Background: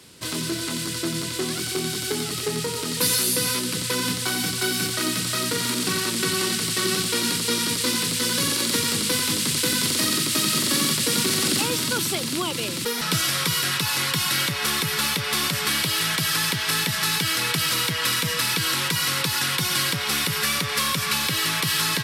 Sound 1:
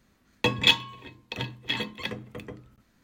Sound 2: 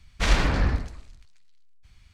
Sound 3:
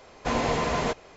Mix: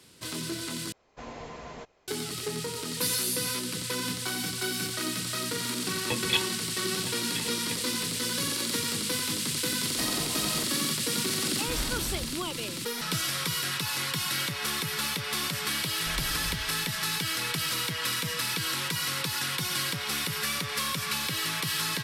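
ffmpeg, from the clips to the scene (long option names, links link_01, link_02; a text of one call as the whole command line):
ffmpeg -i bed.wav -i cue0.wav -i cue1.wav -i cue2.wav -filter_complex "[3:a]asplit=2[link_01][link_02];[2:a]asplit=2[link_03][link_04];[0:a]volume=-7dB[link_05];[link_04]acrusher=bits=8:mix=0:aa=0.000001[link_06];[link_05]asplit=2[link_07][link_08];[link_07]atrim=end=0.924[link_09];[link_01]atrim=end=1.16,asetpts=PTS-STARTPTS,volume=-16dB[link_10];[link_08]atrim=start=2.076[link_11];[1:a]atrim=end=3.03,asetpts=PTS-STARTPTS,volume=-7.5dB,afade=type=in:duration=0.004:curve=hsin,afade=type=out:start_time=3.026:duration=0.004:curve=hsin,adelay=5660[link_12];[link_02]atrim=end=1.16,asetpts=PTS-STARTPTS,volume=-14dB,afade=type=in:duration=0.004:curve=hsin,afade=type=out:start_time=1.156:duration=0.004:curve=hsin,adelay=9720[link_13];[link_03]atrim=end=2.13,asetpts=PTS-STARTPTS,volume=-14.5dB,afade=type=in:duration=0.004:curve=hsin,afade=type=out:start_time=2.126:duration=0.004:curve=hsin,adelay=11480[link_14];[link_06]atrim=end=2.13,asetpts=PTS-STARTPTS,volume=-16.5dB,afade=type=in:duration=0.004:curve=hsin,afade=type=out:start_time=2.126:duration=0.004:curve=hsin,adelay=15860[link_15];[link_09][link_10]acrossfade=duration=0.004:curve1=hsin:curve2=hsin[link_16];[link_16][link_11]acrossfade=duration=0.004:curve1=hsin:curve2=hsin[link_17];[link_17][link_12][link_13][link_14][link_15]amix=inputs=5:normalize=0" out.wav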